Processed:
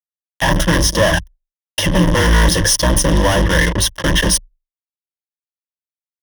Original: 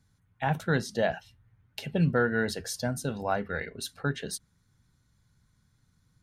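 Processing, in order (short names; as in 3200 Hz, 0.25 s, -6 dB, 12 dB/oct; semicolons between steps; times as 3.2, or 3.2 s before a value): octaver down 2 oct, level +2 dB; fuzz box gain 47 dB, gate -44 dBFS; ripple EQ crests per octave 1.2, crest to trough 13 dB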